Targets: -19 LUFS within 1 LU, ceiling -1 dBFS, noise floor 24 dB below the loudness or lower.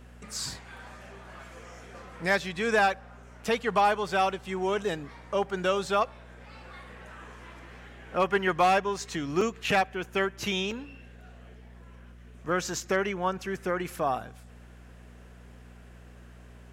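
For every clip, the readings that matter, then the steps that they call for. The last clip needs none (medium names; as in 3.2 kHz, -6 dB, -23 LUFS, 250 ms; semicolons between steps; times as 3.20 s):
dropouts 3; longest dropout 3.4 ms; hum 60 Hz; highest harmonic 240 Hz; hum level -48 dBFS; loudness -28.5 LUFS; peak level -14.0 dBFS; loudness target -19.0 LUFS
-> interpolate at 3.45/9.41/10.71 s, 3.4 ms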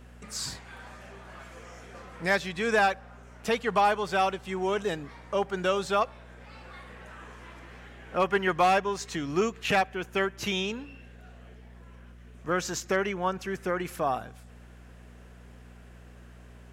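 dropouts 0; hum 60 Hz; highest harmonic 240 Hz; hum level -48 dBFS
-> de-hum 60 Hz, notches 4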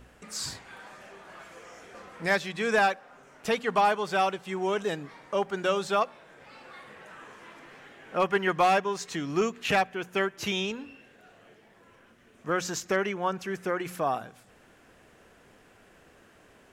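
hum not found; loudness -28.5 LUFS; peak level -13.5 dBFS; loudness target -19.0 LUFS
-> trim +9.5 dB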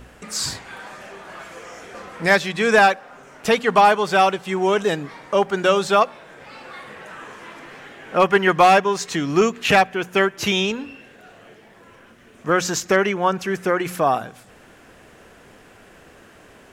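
loudness -19.0 LUFS; peak level -4.0 dBFS; noise floor -49 dBFS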